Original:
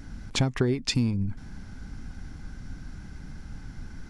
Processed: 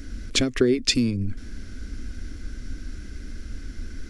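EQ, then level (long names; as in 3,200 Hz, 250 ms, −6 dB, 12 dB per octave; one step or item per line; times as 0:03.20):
phaser with its sweep stopped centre 360 Hz, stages 4
+7.5 dB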